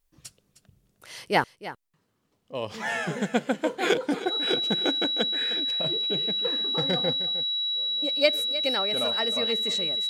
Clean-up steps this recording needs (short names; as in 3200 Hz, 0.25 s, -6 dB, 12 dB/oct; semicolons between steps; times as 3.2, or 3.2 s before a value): notch 3900 Hz, Q 30; inverse comb 0.309 s -14.5 dB